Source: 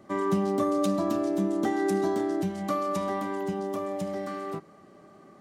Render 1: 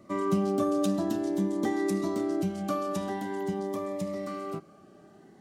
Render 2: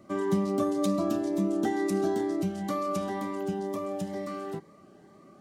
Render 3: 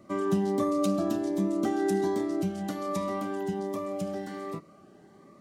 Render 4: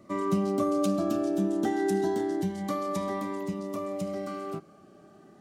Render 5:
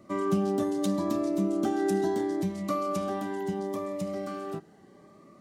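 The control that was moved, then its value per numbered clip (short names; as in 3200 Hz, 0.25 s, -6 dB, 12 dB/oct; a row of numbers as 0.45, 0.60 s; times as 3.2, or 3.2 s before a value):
cascading phaser, rate: 0.48, 2.1, 1.3, 0.27, 0.75 Hz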